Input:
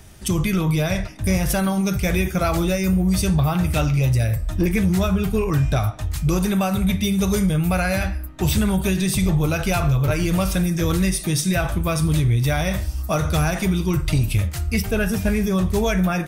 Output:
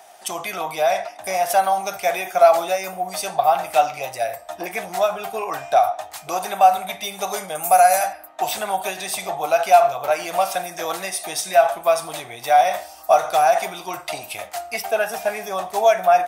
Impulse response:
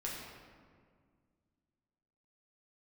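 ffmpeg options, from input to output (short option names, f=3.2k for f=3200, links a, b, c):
-filter_complex "[0:a]highpass=f=720:t=q:w=9,asettb=1/sr,asplit=3[a][b][c];[a]atrim=end=7.554[d];[b]atrim=start=7.55:end=8.13,asetpts=PTS-STARTPTS,afade=t=in:d=0.004:c=qsin,afade=t=out:st=0.576:d=0.004:c=qsin,highshelf=f=5.3k:t=q:w=1.5:g=12[e];[c]atrim=start=8.126[f];[d][e]acrossfade=d=0.004:c1=hsin:c2=qsin[g];[g][f]acrossfade=d=0.004:c1=qsin:c2=hsin,volume=-1dB"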